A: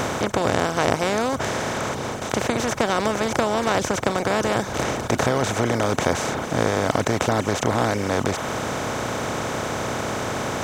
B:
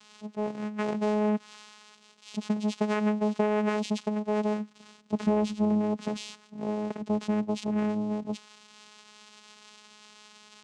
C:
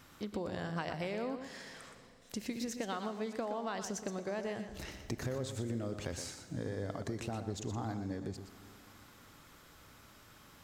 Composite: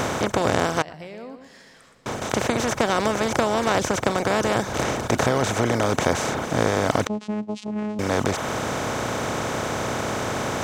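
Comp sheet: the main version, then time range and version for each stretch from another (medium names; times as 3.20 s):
A
0.82–2.06 s: from C
7.07–7.99 s: from B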